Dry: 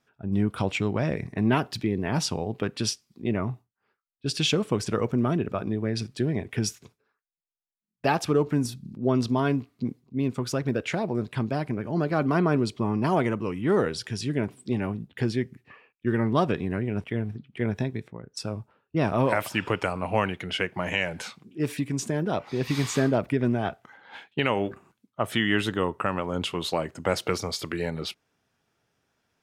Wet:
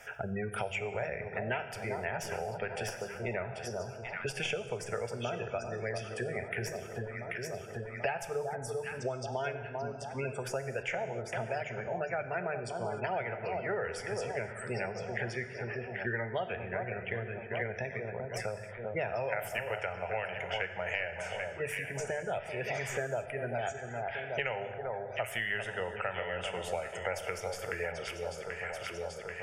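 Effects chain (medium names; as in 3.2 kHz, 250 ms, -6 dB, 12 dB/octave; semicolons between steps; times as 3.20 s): tracing distortion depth 0.025 ms; bass shelf 250 Hz -3.5 dB; hum notches 50/100/150 Hz; echo whose repeats swap between lows and highs 393 ms, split 1.2 kHz, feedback 62%, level -7.5 dB; spectral gate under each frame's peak -30 dB strong; peaking EQ 180 Hz -12 dB 1.5 oct; static phaser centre 1.1 kHz, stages 6; gated-style reverb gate 320 ms falling, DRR 8.5 dB; three bands compressed up and down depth 100%; trim -3 dB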